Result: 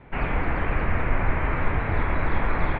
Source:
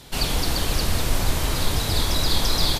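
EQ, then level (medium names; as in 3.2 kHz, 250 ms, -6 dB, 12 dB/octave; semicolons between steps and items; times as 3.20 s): elliptic low-pass 2.3 kHz, stop band 70 dB; dynamic bell 1.7 kHz, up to +6 dB, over -49 dBFS, Q 0.92; distance through air 85 m; 0.0 dB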